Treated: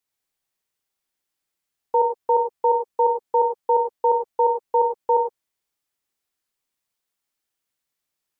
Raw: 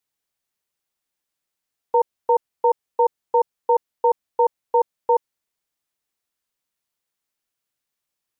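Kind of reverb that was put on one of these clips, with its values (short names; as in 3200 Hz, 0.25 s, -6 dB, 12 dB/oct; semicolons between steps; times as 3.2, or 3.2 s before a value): non-linear reverb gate 0.13 s rising, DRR 3 dB; gain -1.5 dB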